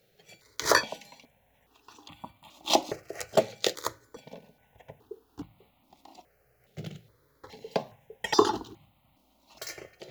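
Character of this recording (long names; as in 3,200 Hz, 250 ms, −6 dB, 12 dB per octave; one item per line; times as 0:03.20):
notches that jump at a steady rate 2.4 Hz 270–1,600 Hz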